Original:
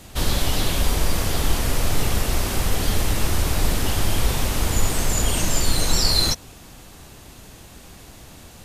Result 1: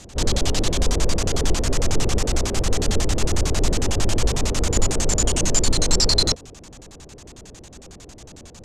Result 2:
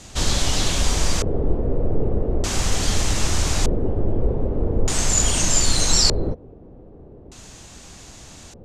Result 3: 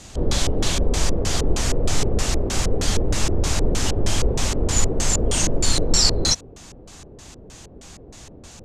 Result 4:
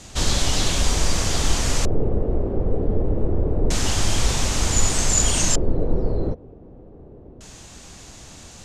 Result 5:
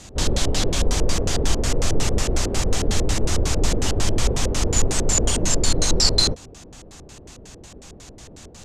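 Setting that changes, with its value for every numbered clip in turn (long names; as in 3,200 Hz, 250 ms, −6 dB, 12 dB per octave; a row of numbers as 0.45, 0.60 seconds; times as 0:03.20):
auto-filter low-pass, speed: 11, 0.41, 3.2, 0.27, 5.5 Hertz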